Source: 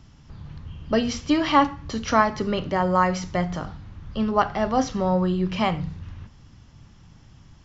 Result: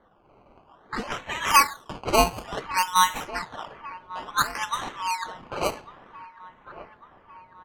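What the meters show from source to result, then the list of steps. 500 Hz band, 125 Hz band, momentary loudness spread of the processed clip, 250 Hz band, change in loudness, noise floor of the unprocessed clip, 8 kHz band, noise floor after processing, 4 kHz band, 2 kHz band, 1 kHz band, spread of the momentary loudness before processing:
-6.5 dB, -13.0 dB, 21 LU, -14.5 dB, -1.5 dB, -51 dBFS, no reading, -58 dBFS, +3.0 dB, +2.0 dB, -0.5 dB, 19 LU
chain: brick-wall FIR high-pass 860 Hz; comb 3.5 ms, depth 33%; in parallel at -8.5 dB: one-sided clip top -25.5 dBFS; on the sum: decimation with a swept rate 17×, swing 100% 0.57 Hz; feedback echo behind a low-pass 1148 ms, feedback 62%, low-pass 2.8 kHz, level -17.5 dB; level-controlled noise filter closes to 1.8 kHz, open at -21 dBFS

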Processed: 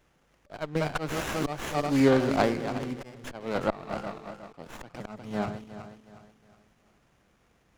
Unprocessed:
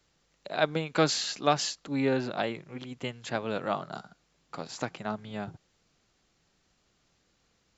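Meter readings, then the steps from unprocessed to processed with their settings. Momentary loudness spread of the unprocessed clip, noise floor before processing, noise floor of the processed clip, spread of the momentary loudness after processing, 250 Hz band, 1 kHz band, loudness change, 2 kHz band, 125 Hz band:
16 LU, -72 dBFS, -67 dBFS, 22 LU, +4.5 dB, 0.0 dB, +2.0 dB, +0.5 dB, +3.5 dB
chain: backward echo that repeats 182 ms, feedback 60%, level -10.5 dB; slow attack 340 ms; sliding maximum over 9 samples; trim +5.5 dB

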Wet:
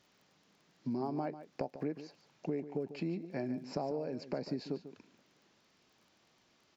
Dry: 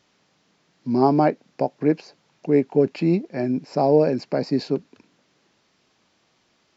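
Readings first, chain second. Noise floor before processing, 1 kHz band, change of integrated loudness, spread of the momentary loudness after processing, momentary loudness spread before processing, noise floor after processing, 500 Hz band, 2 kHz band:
-66 dBFS, -19.0 dB, -17.5 dB, 7 LU, 10 LU, -71 dBFS, -18.5 dB, -15.0 dB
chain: compression 10:1, threshold -28 dBFS, peak gain reduction 17 dB; crackle 19 per s -51 dBFS; delay 145 ms -12.5 dB; trim -5.5 dB

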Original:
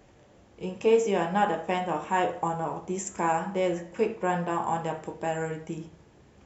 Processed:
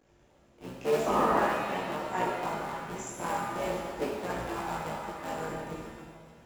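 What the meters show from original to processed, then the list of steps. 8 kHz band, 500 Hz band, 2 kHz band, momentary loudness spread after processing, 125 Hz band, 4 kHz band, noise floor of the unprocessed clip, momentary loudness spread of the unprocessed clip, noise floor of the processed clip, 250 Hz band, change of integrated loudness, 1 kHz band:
no reading, -5.0 dB, -1.5 dB, 15 LU, -5.5 dB, -1.0 dB, -57 dBFS, 12 LU, -63 dBFS, -4.5 dB, -3.5 dB, -3.0 dB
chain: cycle switcher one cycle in 3, muted; echo whose repeats swap between lows and highs 281 ms, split 1.1 kHz, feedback 51%, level -9.5 dB; painted sound noise, 1.06–1.40 s, 200–1300 Hz -21 dBFS; chorus voices 2, 0.45 Hz, delay 19 ms, depth 4.2 ms; pitch-shifted reverb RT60 1.3 s, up +7 st, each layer -8 dB, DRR 0 dB; trim -4.5 dB

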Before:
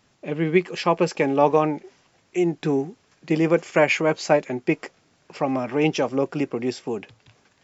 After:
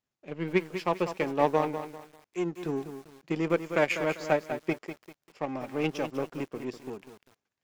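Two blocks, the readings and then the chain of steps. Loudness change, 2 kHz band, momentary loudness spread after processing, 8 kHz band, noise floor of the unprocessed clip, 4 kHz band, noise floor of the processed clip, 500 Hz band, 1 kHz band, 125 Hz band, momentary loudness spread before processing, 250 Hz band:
-8.0 dB, -7.0 dB, 17 LU, no reading, -63 dBFS, -8.5 dB, under -85 dBFS, -8.0 dB, -7.0 dB, -9.0 dB, 12 LU, -9.0 dB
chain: power-law waveshaper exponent 1.4; bit-crushed delay 197 ms, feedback 35%, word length 7-bit, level -9.5 dB; trim -5 dB

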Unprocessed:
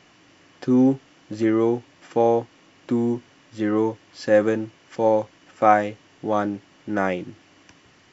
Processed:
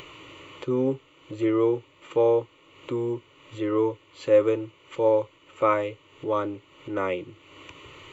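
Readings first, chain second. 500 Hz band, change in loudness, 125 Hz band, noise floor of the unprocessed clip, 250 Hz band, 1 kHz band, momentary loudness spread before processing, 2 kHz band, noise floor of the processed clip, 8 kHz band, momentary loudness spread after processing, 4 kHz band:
-1.0 dB, -3.5 dB, -4.0 dB, -55 dBFS, -6.5 dB, -7.5 dB, 14 LU, -7.0 dB, -58 dBFS, no reading, 22 LU, -0.5 dB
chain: static phaser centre 1.1 kHz, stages 8; upward compressor, threshold -34 dBFS

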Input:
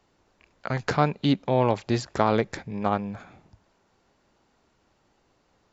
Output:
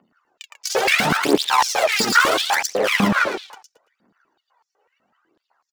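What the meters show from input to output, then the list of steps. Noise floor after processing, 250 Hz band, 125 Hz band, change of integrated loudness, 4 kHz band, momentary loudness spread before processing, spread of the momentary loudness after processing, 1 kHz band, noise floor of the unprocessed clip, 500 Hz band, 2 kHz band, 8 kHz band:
-79 dBFS, +3.0 dB, -4.5 dB, +8.0 dB, +16.5 dB, 10 LU, 8 LU, +8.0 dB, -68 dBFS, +4.5 dB, +17.0 dB, no reading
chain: coarse spectral quantiser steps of 30 dB; in parallel at -1 dB: compression, threshold -33 dBFS, peak gain reduction 16.5 dB; on the sum: waveshaping leveller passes 5; wavefolder -11.5 dBFS; AM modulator 76 Hz, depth 45%; phaser 0.74 Hz, delay 2.7 ms, feedback 73%; on a send: feedback delay 112 ms, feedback 25%, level -5.5 dB; on the sum: loudness maximiser +10 dB; step-sequenced high-pass 8 Hz 210–5600 Hz; trim -9 dB

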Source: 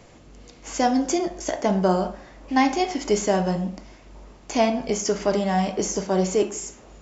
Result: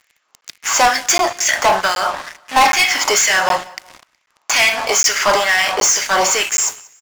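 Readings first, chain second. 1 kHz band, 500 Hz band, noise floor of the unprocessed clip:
+10.0 dB, +2.0 dB, -49 dBFS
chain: LFO high-pass sine 2.2 Hz 970–2100 Hz; waveshaping leveller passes 5; on a send: feedback delay 184 ms, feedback 32%, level -23 dB; on the sum: crackling interface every 0.77 s, samples 512, zero, from 0.41 s

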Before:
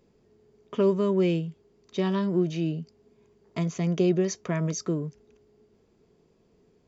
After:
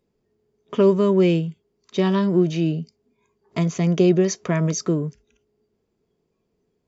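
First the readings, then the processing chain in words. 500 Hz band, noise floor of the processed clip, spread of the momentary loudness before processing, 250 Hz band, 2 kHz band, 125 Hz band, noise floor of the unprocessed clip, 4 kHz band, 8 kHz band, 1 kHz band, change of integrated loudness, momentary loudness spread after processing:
+6.5 dB, -74 dBFS, 13 LU, +6.5 dB, +6.5 dB, +6.5 dB, -65 dBFS, +6.5 dB, no reading, +6.5 dB, +6.5 dB, 13 LU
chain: spectral noise reduction 15 dB; trim +6.5 dB

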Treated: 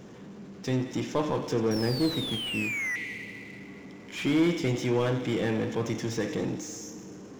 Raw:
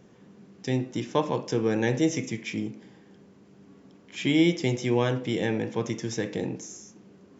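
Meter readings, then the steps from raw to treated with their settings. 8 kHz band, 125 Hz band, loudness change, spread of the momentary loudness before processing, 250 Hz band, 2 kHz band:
no reading, -1.0 dB, -1.5 dB, 13 LU, -1.5 dB, +2.0 dB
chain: painted sound fall, 1.71–2.96 s, 1.9–5.7 kHz -25 dBFS; on a send: feedback echo behind a high-pass 89 ms, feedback 63%, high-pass 1.6 kHz, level -14.5 dB; on the sum: FDN reverb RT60 3.7 s, high-frequency decay 0.6×, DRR 19 dB; power-law waveshaper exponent 0.7; slew-rate limiter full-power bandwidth 120 Hz; trim -5 dB

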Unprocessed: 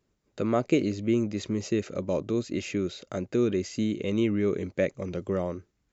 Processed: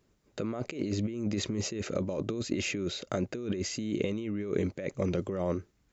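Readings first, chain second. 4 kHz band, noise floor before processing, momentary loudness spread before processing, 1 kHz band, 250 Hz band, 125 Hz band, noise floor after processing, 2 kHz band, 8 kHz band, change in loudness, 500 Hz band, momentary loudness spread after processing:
+2.0 dB, -75 dBFS, 7 LU, -5.5 dB, -5.5 dB, -2.0 dB, -70 dBFS, -2.0 dB, no reading, -4.5 dB, -5.5 dB, 3 LU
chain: compressor with a negative ratio -32 dBFS, ratio -1

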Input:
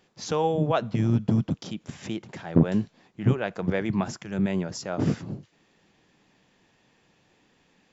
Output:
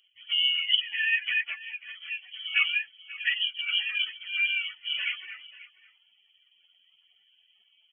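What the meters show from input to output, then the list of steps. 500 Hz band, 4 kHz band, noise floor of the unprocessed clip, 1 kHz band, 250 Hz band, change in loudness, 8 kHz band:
under -40 dB, +18.0 dB, -66 dBFS, -19.5 dB, under -40 dB, 0.0 dB, no reading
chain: spectrum inverted on a logarithmic axis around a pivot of 400 Hz; comb of notches 540 Hz; delay 538 ms -18 dB; frequency inversion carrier 3.2 kHz

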